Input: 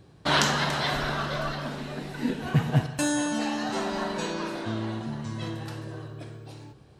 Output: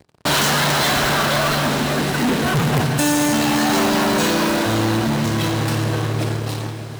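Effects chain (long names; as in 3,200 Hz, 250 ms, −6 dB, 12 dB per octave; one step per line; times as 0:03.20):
in parallel at −9 dB: fuzz pedal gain 39 dB, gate −40 dBFS
on the sum: high-shelf EQ 9,800 Hz +4 dB
wrap-around overflow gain 9.5 dB
leveller curve on the samples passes 5
high-pass filter 48 Hz
on a send: feedback delay with all-pass diffusion 540 ms, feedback 50%, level −10 dB
on the sum: level −6 dB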